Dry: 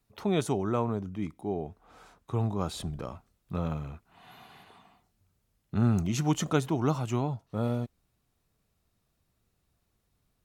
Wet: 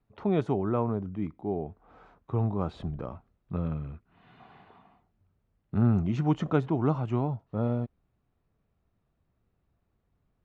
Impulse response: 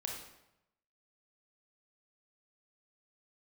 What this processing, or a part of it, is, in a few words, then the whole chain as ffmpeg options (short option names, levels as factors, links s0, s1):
phone in a pocket: -filter_complex "[0:a]lowpass=3000,highshelf=f=2100:g=-10,asettb=1/sr,asplit=3[s0][s1][s2];[s0]atrim=end=3.564[s3];[s1]atrim=start=3.56:end=4.4,asetpts=PTS-STARTPTS,afade=t=in:d=0.004:c=qsin,afade=t=out:st=0.836:d=0.004:c=qsin,equalizer=f=810:t=o:w=1.1:g=-9[s4];[s2]atrim=start=4.396[s5];[s3][s4]acrossfade=d=0.004:c1=hsin:c2=qsin[s6];[s6][s5]acrossfade=d=0.004:c1=qsin:c2=hsin,volume=1.19"